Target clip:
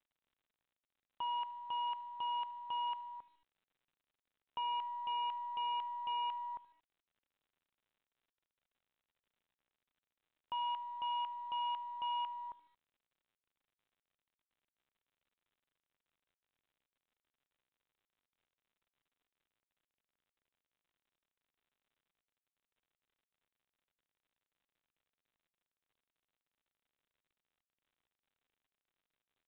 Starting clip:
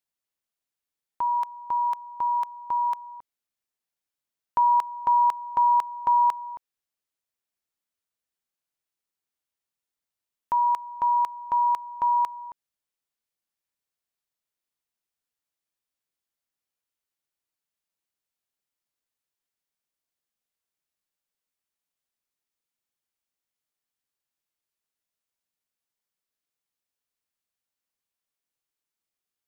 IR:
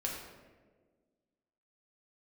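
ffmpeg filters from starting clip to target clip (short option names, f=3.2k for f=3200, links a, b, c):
-af "aeval=exprs='0.168*(cos(1*acos(clip(val(0)/0.168,-1,1)))-cos(1*PI/2))+0.0119*(cos(3*acos(clip(val(0)/0.168,-1,1)))-cos(3*PI/2))+0.0075*(cos(4*acos(clip(val(0)/0.168,-1,1)))-cos(4*PI/2))+0.00596*(cos(5*acos(clip(val(0)/0.168,-1,1)))-cos(5*PI/2))':c=same,aresample=11025,asoftclip=type=hard:threshold=-29.5dB,aresample=44100,aecho=1:1:76|152|228:0.0891|0.0401|0.018,volume=-7dB" -ar 8000 -c:a pcm_mulaw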